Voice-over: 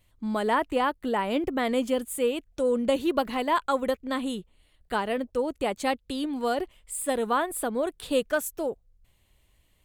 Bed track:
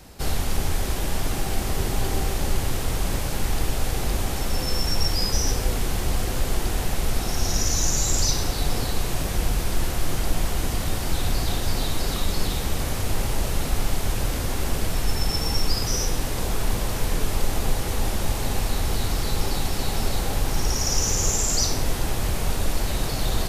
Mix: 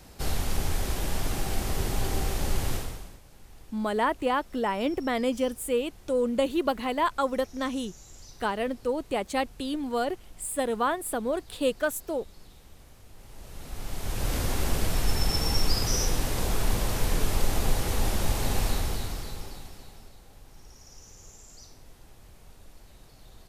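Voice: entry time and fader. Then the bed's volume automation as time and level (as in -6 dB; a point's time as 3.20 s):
3.50 s, -1.0 dB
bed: 2.75 s -4 dB
3.21 s -27 dB
13.13 s -27 dB
14.35 s -2 dB
18.69 s -2 dB
20.17 s -27.5 dB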